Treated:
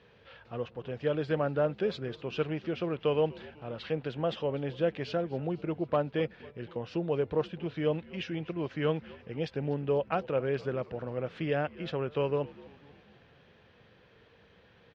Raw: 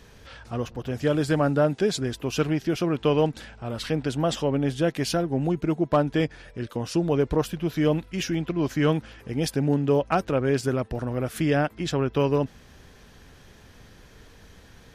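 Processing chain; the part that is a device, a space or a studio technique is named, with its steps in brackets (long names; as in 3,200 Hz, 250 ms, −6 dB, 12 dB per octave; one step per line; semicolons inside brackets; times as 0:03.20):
frequency-shifting delay pedal into a guitar cabinet (echo with shifted repeats 247 ms, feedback 59%, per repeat −75 Hz, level −20 dB; loudspeaker in its box 110–3,800 Hz, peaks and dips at 270 Hz −6 dB, 500 Hz +6 dB, 2,700 Hz +3 dB)
level −8 dB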